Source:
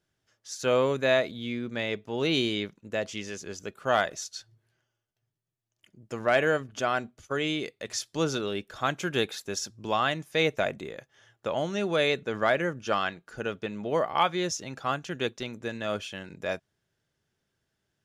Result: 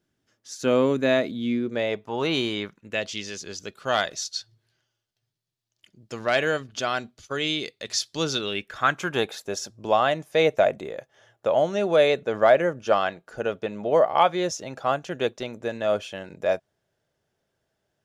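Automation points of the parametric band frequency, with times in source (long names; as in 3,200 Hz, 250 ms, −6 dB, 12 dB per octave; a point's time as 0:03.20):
parametric band +10 dB 1.1 octaves
0:01.54 260 Hz
0:02.07 1,000 Hz
0:02.61 1,000 Hz
0:03.12 4,300 Hz
0:08.29 4,300 Hz
0:09.35 620 Hz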